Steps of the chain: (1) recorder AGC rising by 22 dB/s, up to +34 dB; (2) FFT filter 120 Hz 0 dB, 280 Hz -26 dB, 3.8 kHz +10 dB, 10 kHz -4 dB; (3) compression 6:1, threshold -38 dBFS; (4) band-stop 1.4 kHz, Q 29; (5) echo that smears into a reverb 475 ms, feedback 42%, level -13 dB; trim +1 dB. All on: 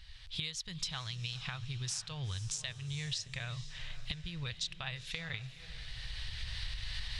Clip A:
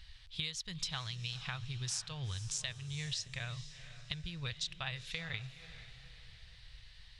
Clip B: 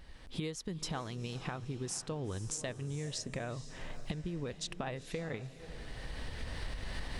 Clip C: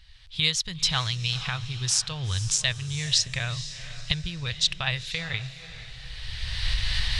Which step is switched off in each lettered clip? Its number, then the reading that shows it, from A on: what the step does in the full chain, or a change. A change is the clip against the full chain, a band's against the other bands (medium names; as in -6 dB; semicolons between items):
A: 1, crest factor change +2.0 dB; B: 2, 500 Hz band +14.0 dB; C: 3, mean gain reduction 9.0 dB